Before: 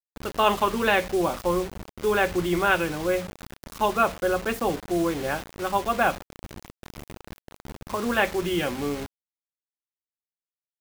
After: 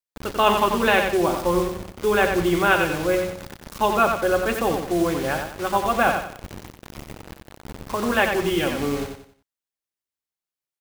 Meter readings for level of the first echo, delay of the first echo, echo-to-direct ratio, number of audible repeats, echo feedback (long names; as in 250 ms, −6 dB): −6.0 dB, 91 ms, −5.5 dB, 4, 34%